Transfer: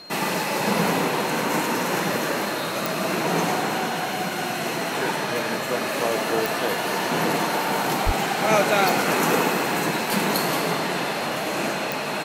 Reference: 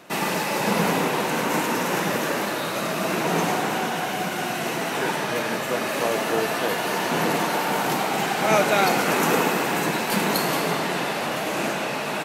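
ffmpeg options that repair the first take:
ffmpeg -i in.wav -filter_complex "[0:a]adeclick=threshold=4,bandreject=frequency=4200:width=30,asplit=3[link_01][link_02][link_03];[link_01]afade=type=out:start_time=8.05:duration=0.02[link_04];[link_02]highpass=frequency=140:width=0.5412,highpass=frequency=140:width=1.3066,afade=type=in:start_time=8.05:duration=0.02,afade=type=out:start_time=8.17:duration=0.02[link_05];[link_03]afade=type=in:start_time=8.17:duration=0.02[link_06];[link_04][link_05][link_06]amix=inputs=3:normalize=0" out.wav

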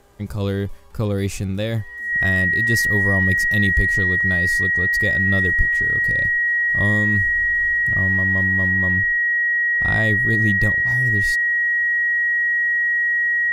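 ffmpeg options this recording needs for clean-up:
ffmpeg -i in.wav -af "bandreject=frequency=403.2:width_type=h:width=4,bandreject=frequency=806.4:width_type=h:width=4,bandreject=frequency=1209.6:width_type=h:width=4,bandreject=frequency=1612.8:width_type=h:width=4,bandreject=frequency=1900:width=30" out.wav

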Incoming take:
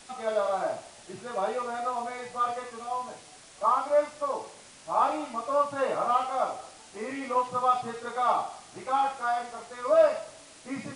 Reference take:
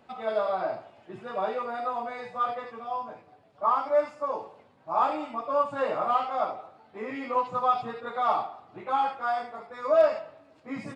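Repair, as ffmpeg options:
ffmpeg -i in.wav -af "afwtdn=0.0035" out.wav

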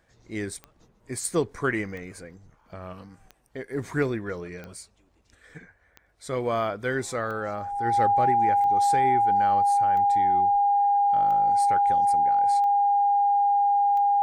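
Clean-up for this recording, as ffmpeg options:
ffmpeg -i in.wav -af "adeclick=threshold=4,bandreject=frequency=810:width=30" out.wav

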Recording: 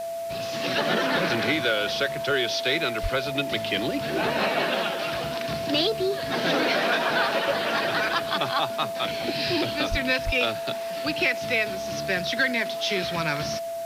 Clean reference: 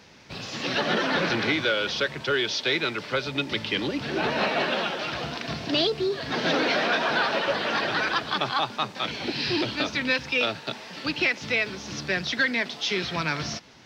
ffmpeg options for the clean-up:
ffmpeg -i in.wav -filter_complex "[0:a]bandreject=frequency=670:width=30,asplit=3[link_01][link_02][link_03];[link_01]afade=type=out:start_time=3.02:duration=0.02[link_04];[link_02]highpass=frequency=140:width=0.5412,highpass=frequency=140:width=1.3066,afade=type=in:start_time=3.02:duration=0.02,afade=type=out:start_time=3.14:duration=0.02[link_05];[link_03]afade=type=in:start_time=3.14:duration=0.02[link_06];[link_04][link_05][link_06]amix=inputs=3:normalize=0,asplit=3[link_07][link_08][link_09];[link_07]afade=type=out:start_time=9.9:duration=0.02[link_10];[link_08]highpass=frequency=140:width=0.5412,highpass=frequency=140:width=1.3066,afade=type=in:start_time=9.9:duration=0.02,afade=type=out:start_time=10.02:duration=0.02[link_11];[link_09]afade=type=in:start_time=10.02:duration=0.02[link_12];[link_10][link_11][link_12]amix=inputs=3:normalize=0,asplit=3[link_13][link_14][link_15];[link_13]afade=type=out:start_time=10.25:duration=0.02[link_16];[link_14]highpass=frequency=140:width=0.5412,highpass=frequency=140:width=1.3066,afade=type=in:start_time=10.25:duration=0.02,afade=type=out:start_time=10.37:duration=0.02[link_17];[link_15]afade=type=in:start_time=10.37:duration=0.02[link_18];[link_16][link_17][link_18]amix=inputs=3:normalize=0,afwtdn=0.0045" out.wav

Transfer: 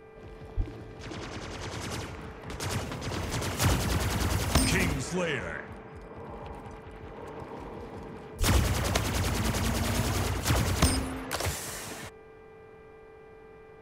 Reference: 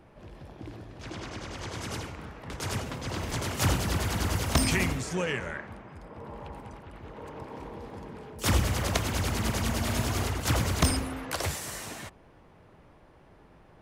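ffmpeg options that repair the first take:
ffmpeg -i in.wav -filter_complex "[0:a]bandreject=frequency=396.2:width_type=h:width=4,bandreject=frequency=792.4:width_type=h:width=4,bandreject=frequency=1188.6:width_type=h:width=4,bandreject=frequency=1584.8:width_type=h:width=4,bandreject=frequency=1981:width_type=h:width=4,bandreject=frequency=2377.2:width_type=h:width=4,bandreject=frequency=440:width=30,asplit=3[link_01][link_02][link_03];[link_01]afade=type=out:start_time=0.56:duration=0.02[link_04];[link_02]highpass=frequency=140:width=0.5412,highpass=frequency=140:width=1.3066,afade=type=in:start_time=0.56:duration=0.02,afade=type=out:start_time=0.68:duration=0.02[link_05];[link_03]afade=type=in:start_time=0.68:duration=0.02[link_06];[link_04][link_05][link_06]amix=inputs=3:normalize=0,asplit=3[link_07][link_08][link_09];[link_07]afade=type=out:start_time=8.39:duration=0.02[link_10];[link_08]highpass=frequency=140:width=0.5412,highpass=frequency=140:width=1.3066,afade=type=in:start_time=8.39:duration=0.02,afade=type=out:start_time=8.51:duration=0.02[link_11];[link_09]afade=type=in:start_time=8.51:duration=0.02[link_12];[link_10][link_11][link_12]amix=inputs=3:normalize=0" out.wav

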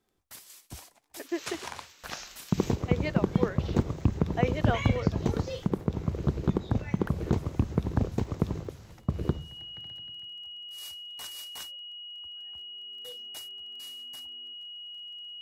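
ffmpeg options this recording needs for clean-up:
ffmpeg -i in.wav -af "adeclick=threshold=4,bandreject=frequency=2900:width=30" out.wav

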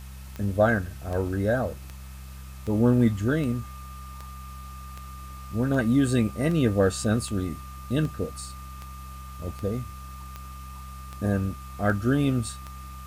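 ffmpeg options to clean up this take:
ffmpeg -i in.wav -af "adeclick=threshold=4,bandreject=frequency=65.6:width_type=h:width=4,bandreject=frequency=131.2:width_type=h:width=4,bandreject=frequency=196.8:width_type=h:width=4,bandreject=frequency=1200:width=30,afwtdn=0.0025" out.wav

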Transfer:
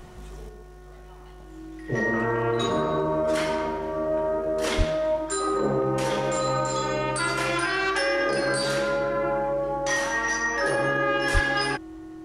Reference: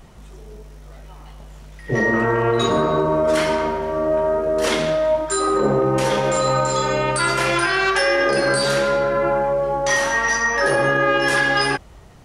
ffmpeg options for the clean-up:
ffmpeg -i in.wav -filter_complex "[0:a]bandreject=frequency=363.5:width_type=h:width=4,bandreject=frequency=727:width_type=h:width=4,bandreject=frequency=1090.5:width_type=h:width=4,bandreject=frequency=1454:width_type=h:width=4,bandreject=frequency=1817.5:width_type=h:width=4,bandreject=frequency=320:width=30,asplit=3[link_01][link_02][link_03];[link_01]afade=type=out:start_time=4.77:duration=0.02[link_04];[link_02]highpass=frequency=140:width=0.5412,highpass=frequency=140:width=1.3066,afade=type=in:start_time=4.77:duration=0.02,afade=type=out:start_time=4.89:duration=0.02[link_05];[link_03]afade=type=in:start_time=4.89:duration=0.02[link_06];[link_04][link_05][link_06]amix=inputs=3:normalize=0,asplit=3[link_07][link_08][link_09];[link_07]afade=type=out:start_time=11.33:duration=0.02[link_10];[link_08]highpass=frequency=140:width=0.5412,highpass=frequency=140:width=1.3066,afade=type=in:start_time=11.33:duration=0.02,afade=type=out:start_time=11.45:duration=0.02[link_11];[link_09]afade=type=in:start_time=11.45:duration=0.02[link_12];[link_10][link_11][link_12]amix=inputs=3:normalize=0,asetnsamples=nb_out_samples=441:pad=0,asendcmd='0.49 volume volume 6.5dB',volume=0dB" out.wav

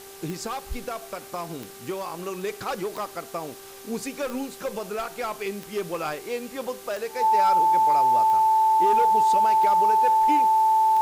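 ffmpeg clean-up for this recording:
ffmpeg -i in.wav -af "adeclick=threshold=4,bandreject=frequency=392:width_type=h:width=4,bandreject=frequency=784:width_type=h:width=4,bandreject=frequency=1176:width_type=h:width=4,bandreject=frequency=1568:width_type=h:width=4,bandreject=frequency=880:width=30,afftdn=noise_reduction=26:noise_floor=-43" out.wav

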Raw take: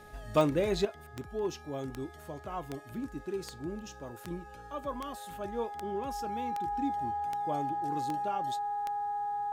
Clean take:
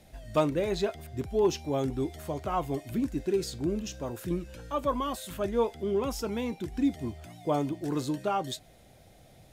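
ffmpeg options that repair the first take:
ffmpeg -i in.wav -af "adeclick=threshold=4,bandreject=frequency=418:width_type=h:width=4,bandreject=frequency=836:width_type=h:width=4,bandreject=frequency=1254:width_type=h:width=4,bandreject=frequency=1672:width_type=h:width=4,bandreject=frequency=820:width=30,asetnsamples=nb_out_samples=441:pad=0,asendcmd='0.85 volume volume 8.5dB',volume=0dB" out.wav

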